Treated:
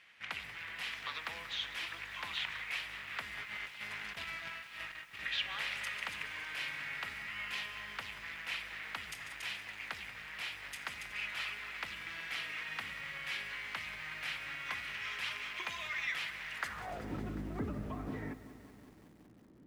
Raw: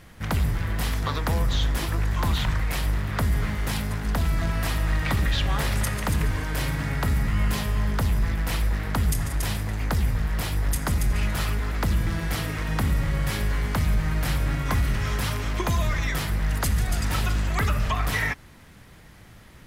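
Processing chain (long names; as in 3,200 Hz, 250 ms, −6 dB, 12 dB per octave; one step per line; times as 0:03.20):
band-pass filter sweep 2,500 Hz → 290 Hz, 0:16.56–0:17.14
0:03.38–0:05.21: compressor whose output falls as the input rises −44 dBFS, ratio −0.5
feedback echo at a low word length 186 ms, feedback 80%, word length 9 bits, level −14.5 dB
level −1 dB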